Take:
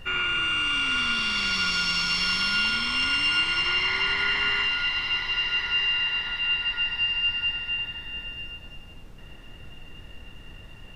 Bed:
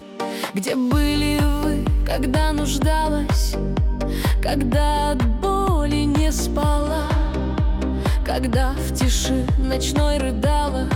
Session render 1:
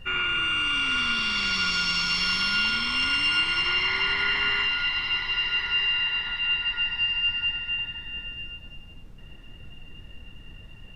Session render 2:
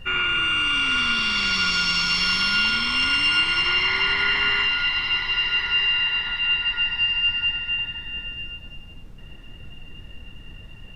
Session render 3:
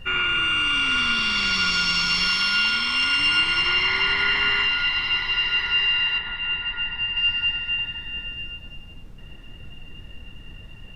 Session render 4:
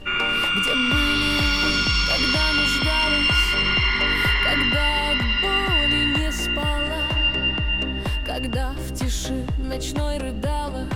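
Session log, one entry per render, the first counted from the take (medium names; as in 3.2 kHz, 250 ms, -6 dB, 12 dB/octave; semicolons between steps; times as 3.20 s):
noise reduction 6 dB, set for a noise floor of -45 dBFS
trim +3.5 dB
2.28–3.19 s: bass shelf 380 Hz -6.5 dB; 6.18–7.17 s: distance through air 270 m
add bed -6 dB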